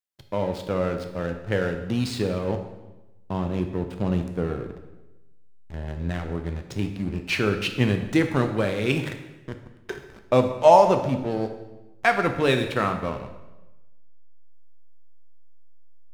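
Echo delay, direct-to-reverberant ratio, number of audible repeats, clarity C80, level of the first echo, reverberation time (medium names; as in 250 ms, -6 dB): no echo, 5.5 dB, no echo, 10.5 dB, no echo, 1.0 s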